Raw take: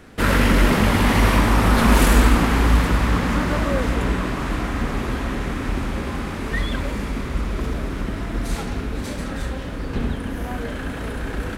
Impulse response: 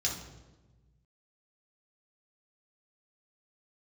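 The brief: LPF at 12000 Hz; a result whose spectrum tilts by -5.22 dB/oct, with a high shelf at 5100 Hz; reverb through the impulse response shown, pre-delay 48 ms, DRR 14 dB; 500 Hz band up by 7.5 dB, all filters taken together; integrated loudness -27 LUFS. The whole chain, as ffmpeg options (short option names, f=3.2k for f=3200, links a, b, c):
-filter_complex "[0:a]lowpass=12k,equalizer=f=500:t=o:g=9,highshelf=f=5.1k:g=5,asplit=2[a][b];[1:a]atrim=start_sample=2205,adelay=48[c];[b][c]afir=irnorm=-1:irlink=0,volume=-19dB[d];[a][d]amix=inputs=2:normalize=0,volume=-8dB"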